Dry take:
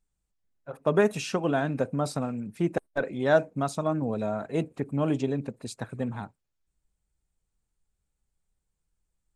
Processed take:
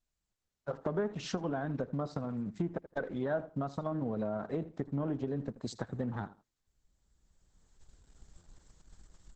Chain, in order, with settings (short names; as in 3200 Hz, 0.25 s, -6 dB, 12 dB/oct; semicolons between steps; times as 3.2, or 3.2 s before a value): recorder AGC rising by 13 dB/s; sample leveller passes 1; dynamic EQ 180 Hz, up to +3 dB, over -37 dBFS, Q 3.8; treble ducked by the level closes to 2000 Hz, closed at -16.5 dBFS; bell 2500 Hz -10 dB 0.32 oct; on a send: feedback echo 80 ms, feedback 17%, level -18 dB; on the sum: compressor 2.5:1, threshold -25 dBFS, peak gain reduction 8.5 dB; stuck buffer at 8.37, samples 512, times 7; gain -7.5 dB; Opus 10 kbps 48000 Hz